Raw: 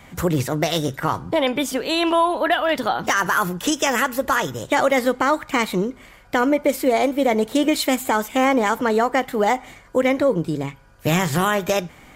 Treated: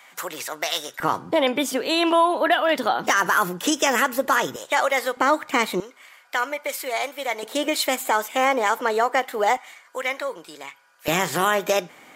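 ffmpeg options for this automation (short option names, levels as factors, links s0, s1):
-af "asetnsamples=n=441:p=0,asendcmd='1 highpass f 230;4.56 highpass f 680;5.17 highpass f 270;5.8 highpass f 1000;7.43 highpass f 490;9.57 highpass f 1000;11.08 highpass f 300',highpass=910"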